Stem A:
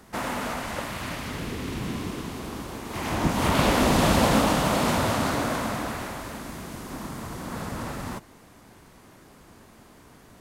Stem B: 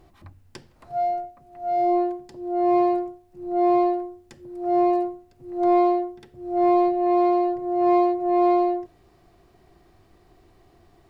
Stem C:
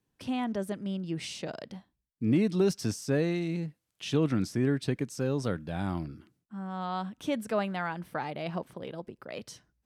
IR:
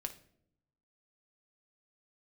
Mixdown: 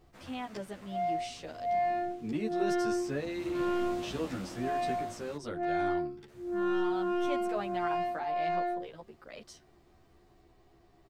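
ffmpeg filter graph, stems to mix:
-filter_complex "[0:a]equalizer=frequency=980:width_type=o:width=0.73:gain=-5.5,volume=-20dB,asplit=3[link_01][link_02][link_03];[link_01]atrim=end=5.37,asetpts=PTS-STARTPTS,afade=type=out:start_time=5.366:duration=0.004:curve=hsin[link_04];[link_02]atrim=start=5.37:end=6.28,asetpts=PTS-STARTPTS,volume=0[link_05];[link_03]atrim=start=6.28,asetpts=PTS-STARTPTS,afade=type=in:duration=0.004:curve=hsin[link_06];[link_04][link_05][link_06]concat=n=3:v=0:a=1[link_07];[1:a]asoftclip=type=tanh:threshold=-21dB,volume=-3.5dB[link_08];[2:a]lowshelf=frequency=230:gain=-11,volume=-2dB[link_09];[link_07][link_08][link_09]amix=inputs=3:normalize=0,equalizer=frequency=11000:width_type=o:width=0.3:gain=-8.5,asplit=2[link_10][link_11];[link_11]adelay=11.6,afreqshift=-0.3[link_12];[link_10][link_12]amix=inputs=2:normalize=1"

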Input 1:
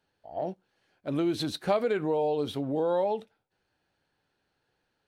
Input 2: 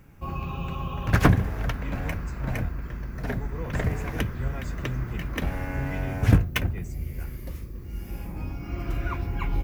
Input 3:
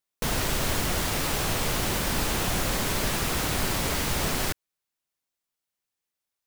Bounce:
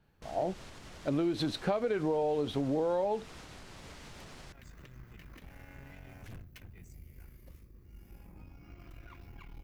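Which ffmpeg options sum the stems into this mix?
ffmpeg -i stem1.wav -i stem2.wav -i stem3.wav -filter_complex "[0:a]highshelf=frequency=5000:gain=-11,volume=2.5dB,asplit=2[link_01][link_02];[1:a]aeval=exprs='(tanh(12.6*val(0)+0.65)-tanh(0.65))/12.6':channel_layout=same,adynamicequalizer=threshold=0.00316:dfrequency=1900:dqfactor=0.7:tfrequency=1900:tqfactor=0.7:attack=5:release=100:ratio=0.375:range=3.5:mode=boostabove:tftype=highshelf,volume=-14.5dB[link_03];[2:a]lowpass=6800,volume=-17dB[link_04];[link_02]apad=whole_len=424754[link_05];[link_03][link_05]sidechaincompress=threshold=-43dB:ratio=8:attack=16:release=1140[link_06];[link_06][link_04]amix=inputs=2:normalize=0,alimiter=level_in=15.5dB:limit=-24dB:level=0:latency=1:release=229,volume=-15.5dB,volume=0dB[link_07];[link_01][link_07]amix=inputs=2:normalize=0,acompressor=threshold=-27dB:ratio=6" out.wav

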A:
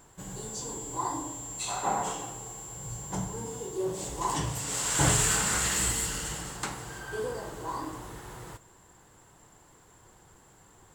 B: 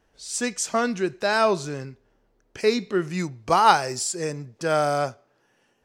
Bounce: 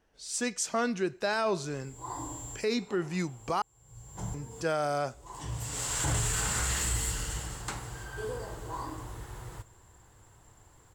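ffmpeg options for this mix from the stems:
ffmpeg -i stem1.wav -i stem2.wav -filter_complex "[0:a]lowshelf=frequency=130:width_type=q:width=1.5:gain=7.5,adelay=1050,volume=-3dB[link_01];[1:a]volume=-4.5dB,asplit=3[link_02][link_03][link_04];[link_02]atrim=end=3.62,asetpts=PTS-STARTPTS,afade=type=out:start_time=3.616:duration=0.004:curve=hsin[link_05];[link_03]atrim=start=3.62:end=4.34,asetpts=PTS-STARTPTS,volume=0[link_06];[link_04]atrim=start=4.34,asetpts=PTS-STARTPTS,afade=type=in:duration=0.004:curve=hsin[link_07];[link_05][link_06][link_07]concat=n=3:v=0:a=1,asplit=2[link_08][link_09];[link_09]apad=whole_len=529112[link_10];[link_01][link_10]sidechaincompress=threshold=-43dB:ratio=20:attack=7.8:release=462[link_11];[link_11][link_08]amix=inputs=2:normalize=0,alimiter=limit=-20dB:level=0:latency=1:release=27" out.wav

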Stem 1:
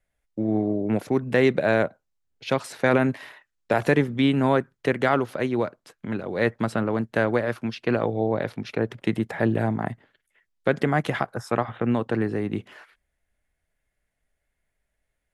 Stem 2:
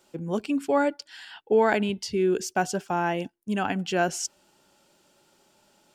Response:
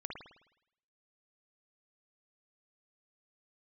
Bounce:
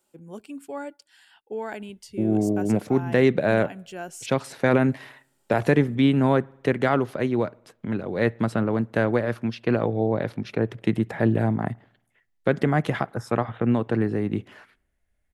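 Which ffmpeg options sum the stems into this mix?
-filter_complex "[0:a]lowshelf=frequency=400:gain=5.5,adelay=1800,volume=-2.5dB,asplit=2[link_01][link_02];[link_02]volume=-22.5dB[link_03];[1:a]highshelf=frequency=7200:width_type=q:width=1.5:gain=7,volume=-11.5dB[link_04];[2:a]atrim=start_sample=2205[link_05];[link_03][link_05]afir=irnorm=-1:irlink=0[link_06];[link_01][link_04][link_06]amix=inputs=3:normalize=0"

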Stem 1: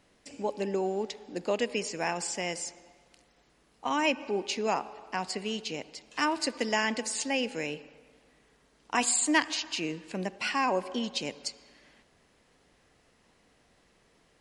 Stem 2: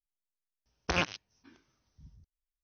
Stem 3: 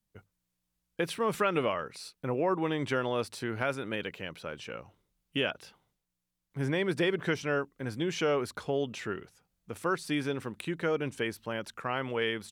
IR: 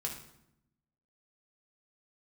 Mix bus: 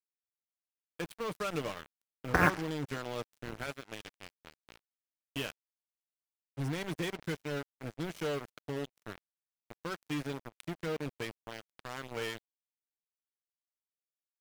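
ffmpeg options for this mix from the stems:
-filter_complex "[1:a]highshelf=frequency=2300:width_type=q:width=3:gain=-10.5,adelay=1450,volume=2dB[link_01];[2:a]equalizer=frequency=870:width_type=o:width=1.9:gain=-3,acrusher=bits=7:mix=0:aa=0.5,volume=-8dB[link_02];[link_01][link_02]amix=inputs=2:normalize=0,adynamicequalizer=threshold=0.002:dfrequency=120:dqfactor=0.91:tfrequency=120:tqfactor=0.91:attack=5:release=100:ratio=0.375:range=2:mode=boostabove:tftype=bell,aecho=1:1:6.6:0.34,acrusher=bits=5:mix=0:aa=0.5"

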